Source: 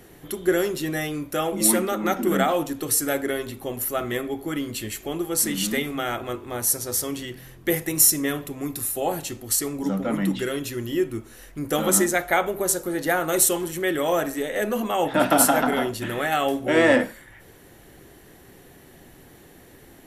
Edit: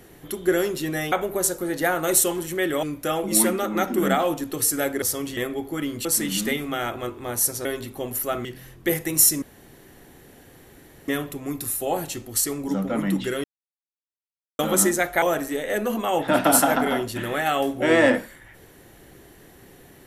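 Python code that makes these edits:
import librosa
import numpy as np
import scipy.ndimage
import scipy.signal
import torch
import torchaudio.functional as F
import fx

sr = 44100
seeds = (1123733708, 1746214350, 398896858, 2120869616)

y = fx.edit(x, sr, fx.swap(start_s=3.31, length_s=0.8, other_s=6.91, other_length_s=0.35),
    fx.cut(start_s=4.79, length_s=0.52),
    fx.insert_room_tone(at_s=8.23, length_s=1.66),
    fx.silence(start_s=10.59, length_s=1.15),
    fx.move(start_s=12.37, length_s=1.71, to_s=1.12), tone=tone)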